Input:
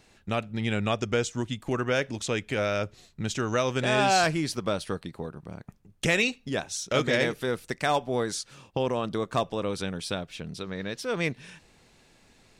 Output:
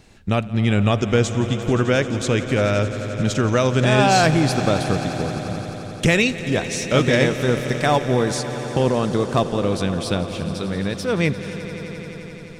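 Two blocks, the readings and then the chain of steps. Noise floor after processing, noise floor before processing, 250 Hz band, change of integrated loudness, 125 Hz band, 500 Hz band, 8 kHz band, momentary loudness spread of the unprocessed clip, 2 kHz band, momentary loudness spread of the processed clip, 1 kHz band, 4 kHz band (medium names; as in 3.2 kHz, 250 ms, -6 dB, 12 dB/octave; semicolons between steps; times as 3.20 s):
-35 dBFS, -61 dBFS, +10.5 dB, +8.0 dB, +13.0 dB, +8.0 dB, +5.5 dB, 12 LU, +6.0 dB, 10 LU, +6.5 dB, +6.0 dB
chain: bass shelf 290 Hz +8.5 dB; echo with a slow build-up 87 ms, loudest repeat 5, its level -17 dB; trim +5 dB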